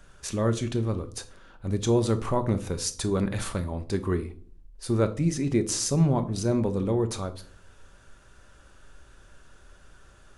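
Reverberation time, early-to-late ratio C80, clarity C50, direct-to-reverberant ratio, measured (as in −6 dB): 0.50 s, 21.0 dB, 15.5 dB, 8.5 dB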